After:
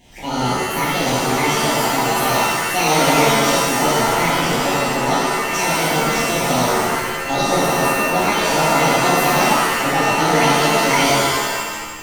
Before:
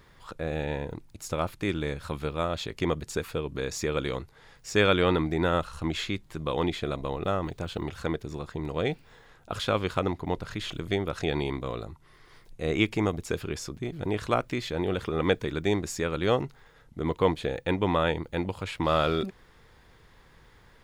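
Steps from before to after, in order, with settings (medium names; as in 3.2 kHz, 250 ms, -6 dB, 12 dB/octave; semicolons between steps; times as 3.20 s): speed mistake 45 rpm record played at 78 rpm; Butterworth band-stop 1.3 kHz, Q 1.6; loudness maximiser +16.5 dB; pitch-shifted reverb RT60 1.5 s, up +7 st, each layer -2 dB, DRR -9 dB; trim -15 dB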